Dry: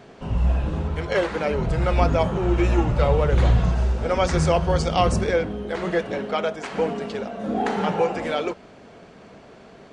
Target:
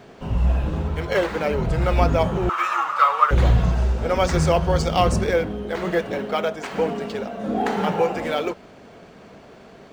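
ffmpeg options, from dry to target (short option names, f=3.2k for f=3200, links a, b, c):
-filter_complex "[0:a]acrossover=split=1700[a][b];[b]acrusher=bits=4:mode=log:mix=0:aa=0.000001[c];[a][c]amix=inputs=2:normalize=0,asettb=1/sr,asplit=3[d][e][f];[d]atrim=end=2.494[g];[e]atrim=start=2.49:end=3.31,asetpts=PTS-STARTPTS,afade=t=in:d=0.004:c=qsin,afade=t=out:st=0.816:d=0.004:c=qsin,highpass=f=1.2k:t=q:w=11[h];[f]atrim=start=3.306[i];[g][h]acrossfade=d=0.004:c1=hsin:c2=qsin[j];[j][i]acrossfade=d=0.004:c1=qsin:c2=hsin,volume=1dB"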